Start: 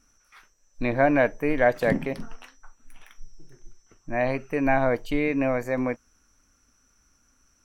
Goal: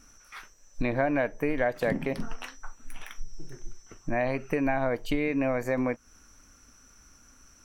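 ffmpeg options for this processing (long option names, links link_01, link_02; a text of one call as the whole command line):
ffmpeg -i in.wav -af "acompressor=threshold=-34dB:ratio=4,volume=8dB" out.wav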